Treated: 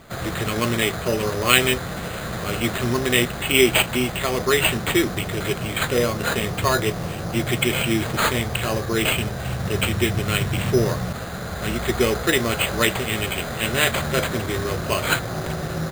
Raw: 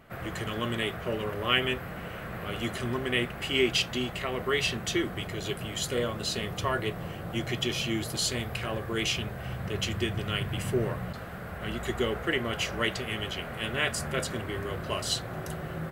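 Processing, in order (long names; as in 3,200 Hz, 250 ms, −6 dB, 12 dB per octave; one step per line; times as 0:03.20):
decimation without filtering 8×
level +9 dB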